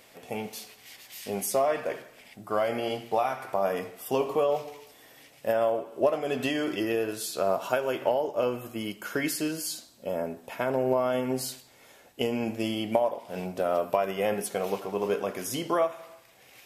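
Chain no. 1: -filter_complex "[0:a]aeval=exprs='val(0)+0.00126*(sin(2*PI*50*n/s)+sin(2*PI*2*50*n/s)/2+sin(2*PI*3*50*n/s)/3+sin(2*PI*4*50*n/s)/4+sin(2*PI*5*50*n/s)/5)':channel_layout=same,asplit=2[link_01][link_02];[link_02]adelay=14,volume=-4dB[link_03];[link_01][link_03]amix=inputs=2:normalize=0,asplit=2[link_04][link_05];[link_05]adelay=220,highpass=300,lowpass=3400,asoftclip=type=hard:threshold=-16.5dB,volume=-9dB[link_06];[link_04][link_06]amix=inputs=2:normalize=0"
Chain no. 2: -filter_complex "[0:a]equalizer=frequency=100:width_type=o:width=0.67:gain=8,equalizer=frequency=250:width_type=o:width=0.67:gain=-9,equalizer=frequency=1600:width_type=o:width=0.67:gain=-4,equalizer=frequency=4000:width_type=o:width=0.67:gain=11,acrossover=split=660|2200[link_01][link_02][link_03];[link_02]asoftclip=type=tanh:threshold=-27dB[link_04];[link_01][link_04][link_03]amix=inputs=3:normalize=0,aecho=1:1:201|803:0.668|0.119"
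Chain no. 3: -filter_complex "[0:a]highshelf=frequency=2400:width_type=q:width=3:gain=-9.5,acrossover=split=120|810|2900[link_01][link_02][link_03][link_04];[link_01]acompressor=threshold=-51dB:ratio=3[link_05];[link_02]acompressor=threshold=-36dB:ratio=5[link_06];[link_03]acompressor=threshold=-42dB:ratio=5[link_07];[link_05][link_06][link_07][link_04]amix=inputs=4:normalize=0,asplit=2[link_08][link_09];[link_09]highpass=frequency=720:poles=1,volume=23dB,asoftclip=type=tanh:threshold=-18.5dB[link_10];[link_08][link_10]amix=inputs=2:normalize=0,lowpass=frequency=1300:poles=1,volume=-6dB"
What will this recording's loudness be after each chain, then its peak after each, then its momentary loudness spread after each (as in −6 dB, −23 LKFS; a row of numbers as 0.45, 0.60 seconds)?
−27.5, −29.0, −31.0 LKFS; −8.0, −12.5, −19.0 dBFS; 11, 10, 10 LU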